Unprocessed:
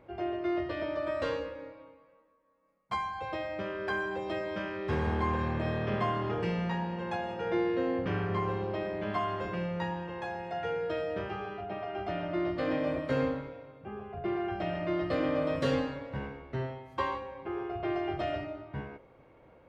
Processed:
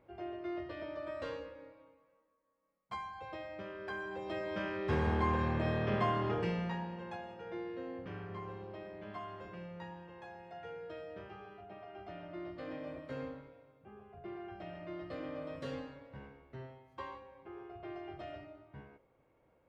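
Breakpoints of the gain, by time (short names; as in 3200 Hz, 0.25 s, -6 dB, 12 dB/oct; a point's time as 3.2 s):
3.97 s -9 dB
4.66 s -1.5 dB
6.31 s -1.5 dB
7.45 s -13 dB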